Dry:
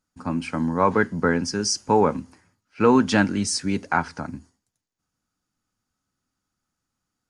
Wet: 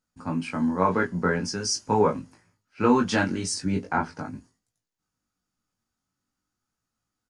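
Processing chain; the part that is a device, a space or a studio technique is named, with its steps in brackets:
double-tracked vocal (double-tracking delay 17 ms −10.5 dB; chorus effect 0.43 Hz, delay 18.5 ms, depth 3.7 ms)
0:03.54–0:04.19: tilt shelving filter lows +4.5 dB, about 810 Hz

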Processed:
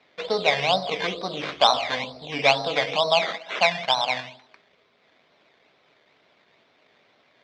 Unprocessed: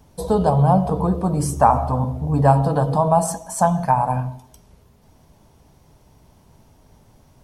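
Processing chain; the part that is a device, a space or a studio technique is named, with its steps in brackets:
circuit-bent sampling toy (sample-and-hold swept by an LFO 13×, swing 60% 2.2 Hz; loudspeaker in its box 520–4,800 Hz, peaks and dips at 890 Hz −9 dB, 2,200 Hz +6 dB, 3,600 Hz +5 dB)

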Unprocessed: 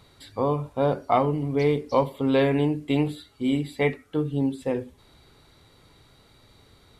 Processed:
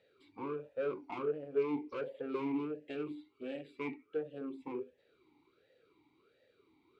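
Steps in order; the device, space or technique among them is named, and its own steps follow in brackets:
talk box (tube saturation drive 26 dB, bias 0.75; formant filter swept between two vowels e-u 1.4 Hz)
level +4 dB

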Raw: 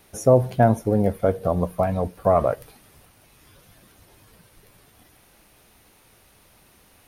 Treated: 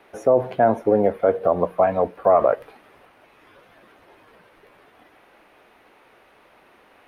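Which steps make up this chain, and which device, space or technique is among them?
DJ mixer with the lows and highs turned down (three-way crossover with the lows and the highs turned down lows −19 dB, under 280 Hz, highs −23 dB, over 2,800 Hz; brickwall limiter −13.5 dBFS, peak gain reduction 8 dB)
level +7 dB

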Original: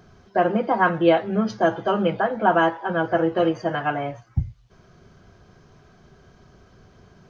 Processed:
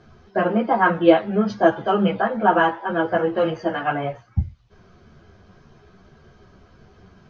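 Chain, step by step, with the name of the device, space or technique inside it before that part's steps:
string-machine ensemble chorus (string-ensemble chorus; low-pass filter 5,100 Hz 12 dB per octave)
level +4.5 dB

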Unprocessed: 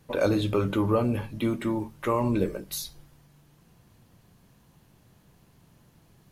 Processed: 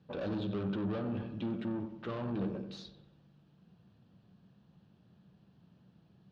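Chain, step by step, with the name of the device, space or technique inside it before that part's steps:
analogue delay pedal into a guitar amplifier (bucket-brigade delay 92 ms, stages 2,048, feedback 53%, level −12 dB; tube saturation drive 29 dB, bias 0.5; loudspeaker in its box 96–4,200 Hz, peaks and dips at 190 Hz +9 dB, 1,000 Hz −5 dB, 2,100 Hz −10 dB)
low-shelf EQ 100 Hz +5.5 dB
level −5.5 dB

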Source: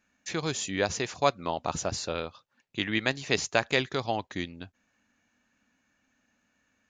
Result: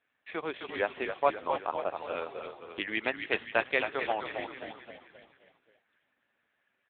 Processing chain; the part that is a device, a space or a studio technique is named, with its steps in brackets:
0:01.07–0:01.94: low-pass filter 3,800 Hz 24 dB per octave
low-shelf EQ 170 Hz −5 dB
echo with shifted repeats 263 ms, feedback 49%, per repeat −41 Hz, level −5 dB
satellite phone (band-pass filter 360–3,100 Hz; single-tap delay 593 ms −23 dB; AMR narrowband 6.7 kbit/s 8,000 Hz)

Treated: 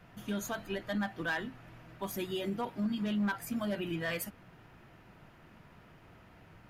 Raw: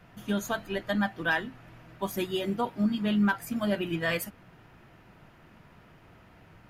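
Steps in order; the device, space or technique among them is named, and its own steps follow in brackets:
clipper into limiter (hard clipping −20.5 dBFS, distortion −21 dB; brickwall limiter −25 dBFS, peak gain reduction 4.5 dB)
level −2 dB

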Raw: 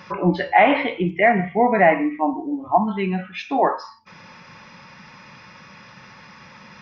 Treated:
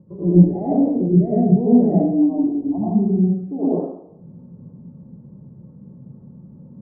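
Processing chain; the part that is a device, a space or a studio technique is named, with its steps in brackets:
next room (low-pass filter 410 Hz 24 dB per octave; convolution reverb RT60 0.75 s, pre-delay 76 ms, DRR −9 dB)
parametric band 140 Hz +4.5 dB 1 octave
level −2.5 dB

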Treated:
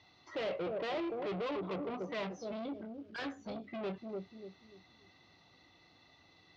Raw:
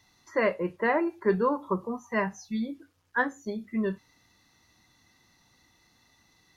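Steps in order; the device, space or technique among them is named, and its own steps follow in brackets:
0:02.73–0:03.57: thirty-one-band graphic EQ 100 Hz +11 dB, 400 Hz −11 dB, 1,600 Hz +7 dB
analogue delay pedal into a guitar amplifier (bucket-brigade delay 292 ms, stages 1,024, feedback 31%, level −10.5 dB; tube saturation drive 39 dB, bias 0.35; loudspeaker in its box 93–4,100 Hz, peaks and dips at 130 Hz −5 dB, 220 Hz −8 dB, 660 Hz +4 dB, 960 Hz −5 dB, 1,700 Hz −9 dB)
level +4.5 dB

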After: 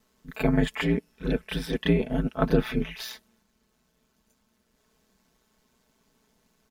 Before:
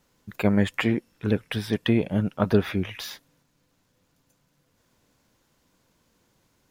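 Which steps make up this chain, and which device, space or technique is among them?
backwards echo 31 ms −10 dB
ring-modulated robot voice (ring modulation 61 Hz; comb filter 4.6 ms)

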